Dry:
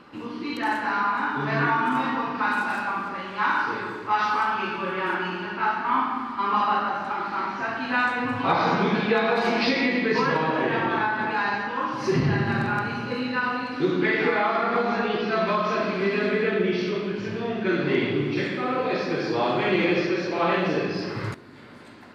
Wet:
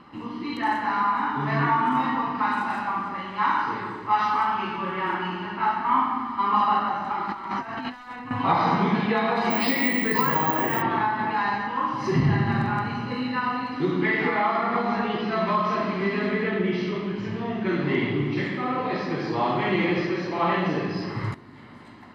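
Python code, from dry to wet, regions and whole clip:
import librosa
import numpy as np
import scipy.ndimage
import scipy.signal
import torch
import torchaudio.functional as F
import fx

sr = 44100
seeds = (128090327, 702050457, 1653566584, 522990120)

y = fx.chain(x, sr, fx.clip_hard(threshold_db=-21.5),
    fx.over_compress(threshold_db=-32.0, ratio=-0.5), at=(7.25, 8.31))
y = fx.chain(y, sr, fx.lowpass(hz=5900.0, slope=12),
    fx.peak_eq(hz=72.0, db=-4.0, octaves=2.4),
    fx.resample_bad(factor=2, down='none', up='zero_stuff'), at=(9.5, 10.82))
y = fx.high_shelf(y, sr, hz=3600.0, db=-8.0)
y = y + 0.45 * np.pad(y, (int(1.0 * sr / 1000.0), 0))[:len(y)]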